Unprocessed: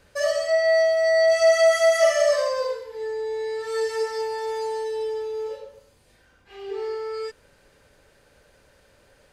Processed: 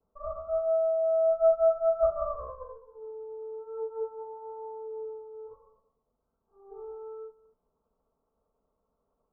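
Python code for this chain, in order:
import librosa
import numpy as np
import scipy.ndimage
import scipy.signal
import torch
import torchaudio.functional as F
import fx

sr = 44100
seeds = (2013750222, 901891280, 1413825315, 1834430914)

y = fx.lower_of_two(x, sr, delay_ms=4.5)
y = scipy.signal.sosfilt(scipy.signal.butter(16, 1300.0, 'lowpass', fs=sr, output='sos'), y)
y = y + 10.0 ** (-15.0 / 20.0) * np.pad(y, (int(225 * sr / 1000.0), 0))[:len(y)]
y = fx.upward_expand(y, sr, threshold_db=-38.0, expansion=1.5)
y = y * librosa.db_to_amplitude(-4.5)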